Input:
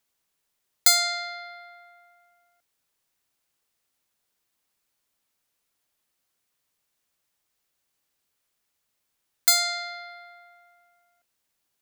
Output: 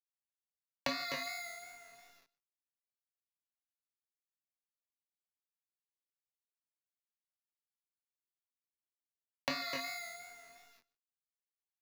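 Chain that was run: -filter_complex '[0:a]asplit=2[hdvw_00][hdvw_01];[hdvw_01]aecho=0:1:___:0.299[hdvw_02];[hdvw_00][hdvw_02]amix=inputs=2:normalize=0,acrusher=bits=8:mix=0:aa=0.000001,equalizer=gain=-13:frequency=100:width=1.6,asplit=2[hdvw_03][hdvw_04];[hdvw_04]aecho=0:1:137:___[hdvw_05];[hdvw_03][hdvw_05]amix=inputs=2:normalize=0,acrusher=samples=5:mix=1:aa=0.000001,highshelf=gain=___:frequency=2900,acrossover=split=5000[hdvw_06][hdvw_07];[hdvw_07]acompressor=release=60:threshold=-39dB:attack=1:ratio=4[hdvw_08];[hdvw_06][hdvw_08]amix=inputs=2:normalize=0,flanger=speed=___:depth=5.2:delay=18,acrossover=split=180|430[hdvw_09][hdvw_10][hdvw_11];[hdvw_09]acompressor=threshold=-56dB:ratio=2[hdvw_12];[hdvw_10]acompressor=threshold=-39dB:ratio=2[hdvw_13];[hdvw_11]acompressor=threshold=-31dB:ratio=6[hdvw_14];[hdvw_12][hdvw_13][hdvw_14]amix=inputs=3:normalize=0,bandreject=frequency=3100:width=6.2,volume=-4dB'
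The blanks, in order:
253, 0.0708, 2.5, 2.8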